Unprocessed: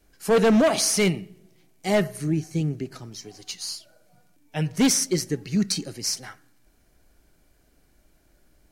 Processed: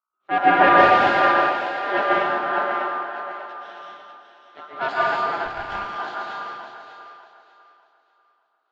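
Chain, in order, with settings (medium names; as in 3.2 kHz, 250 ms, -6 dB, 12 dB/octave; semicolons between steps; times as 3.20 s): coarse spectral quantiser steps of 15 dB; half-wave rectifier; hum 60 Hz, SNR 20 dB; ring modulator 1.2 kHz; cabinet simulation 170–3100 Hz, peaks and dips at 220 Hz +4 dB, 360 Hz +8 dB, 690 Hz +10 dB, 1.1 kHz -8 dB, 2 kHz -3 dB; on a send: two-band feedback delay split 330 Hz, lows 175 ms, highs 595 ms, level -4.5 dB; on the sum: plate-style reverb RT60 2.6 s, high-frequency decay 0.85×, pre-delay 115 ms, DRR -5 dB; 5.45–5.96 s: valve stage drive 15 dB, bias 0.6; three bands expanded up and down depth 100%; trim +1.5 dB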